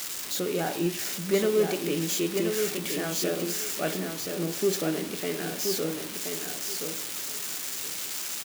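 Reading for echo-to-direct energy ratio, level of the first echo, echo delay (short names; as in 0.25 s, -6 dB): -5.5 dB, -5.5 dB, 1.026 s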